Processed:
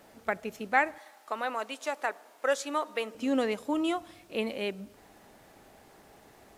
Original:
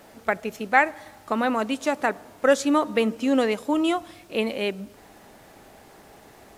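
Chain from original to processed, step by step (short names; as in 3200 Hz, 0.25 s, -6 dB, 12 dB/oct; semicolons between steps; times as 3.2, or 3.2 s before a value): 0.98–3.15 HPF 530 Hz 12 dB/oct; gain -6.5 dB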